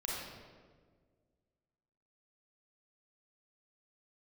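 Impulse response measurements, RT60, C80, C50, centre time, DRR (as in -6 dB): 1.7 s, 1.0 dB, -2.0 dB, 0.1 s, -5.5 dB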